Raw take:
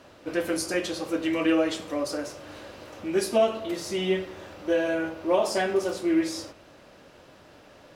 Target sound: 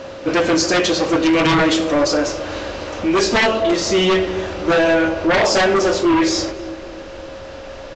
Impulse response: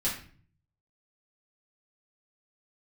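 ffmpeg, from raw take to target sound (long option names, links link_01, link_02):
-filter_complex "[0:a]asplit=2[link_01][link_02];[link_02]adelay=267,lowpass=frequency=2000:poles=1,volume=-17dB,asplit=2[link_03][link_04];[link_04]adelay=267,lowpass=frequency=2000:poles=1,volume=0.49,asplit=2[link_05][link_06];[link_06]adelay=267,lowpass=frequency=2000:poles=1,volume=0.49,asplit=2[link_07][link_08];[link_08]adelay=267,lowpass=frequency=2000:poles=1,volume=0.49[link_09];[link_01][link_03][link_05][link_07][link_09]amix=inputs=5:normalize=0,aeval=exprs='val(0)+0.00355*sin(2*PI*540*n/s)':channel_layout=same,asubboost=boost=6:cutoff=56,aresample=16000,aeval=exprs='0.282*sin(PI/2*3.98*val(0)/0.282)':channel_layout=same,aresample=44100"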